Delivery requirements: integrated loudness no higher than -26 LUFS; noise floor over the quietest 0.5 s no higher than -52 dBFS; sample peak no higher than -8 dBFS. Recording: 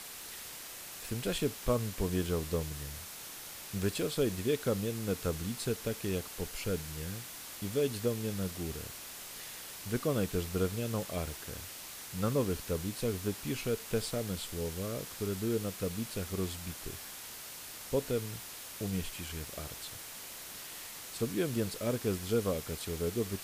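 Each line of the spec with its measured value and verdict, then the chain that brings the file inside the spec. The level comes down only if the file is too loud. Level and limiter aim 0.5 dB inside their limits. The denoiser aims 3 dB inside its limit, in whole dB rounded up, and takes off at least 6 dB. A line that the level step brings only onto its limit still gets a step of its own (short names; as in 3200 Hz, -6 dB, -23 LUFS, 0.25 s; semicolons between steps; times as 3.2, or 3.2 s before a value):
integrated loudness -36.0 LUFS: OK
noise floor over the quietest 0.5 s -46 dBFS: fail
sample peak -17.0 dBFS: OK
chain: denoiser 9 dB, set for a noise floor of -46 dBFS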